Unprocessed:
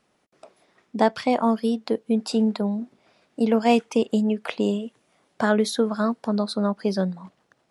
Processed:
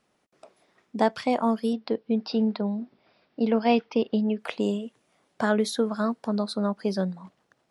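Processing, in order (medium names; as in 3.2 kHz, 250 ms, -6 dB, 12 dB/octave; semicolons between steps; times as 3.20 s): 1.73–4.39 s: steep low-pass 5.4 kHz 72 dB/octave; trim -3 dB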